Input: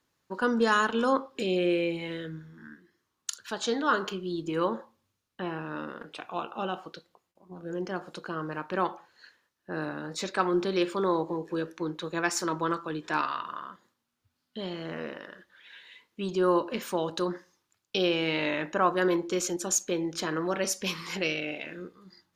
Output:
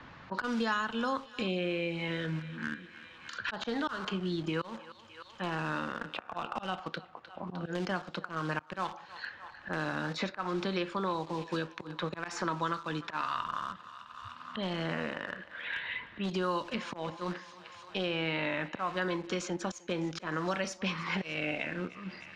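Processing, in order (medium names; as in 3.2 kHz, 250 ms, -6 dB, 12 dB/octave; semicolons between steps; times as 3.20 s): level-controlled noise filter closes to 2.5 kHz, open at -24 dBFS; peaking EQ 390 Hz -9.5 dB 0.94 oct; slow attack 314 ms; in parallel at -10 dB: bit crusher 7-bit; on the sum: distance through air 110 m; thinning echo 305 ms, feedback 45%, high-pass 580 Hz, level -22 dB; three bands compressed up and down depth 100%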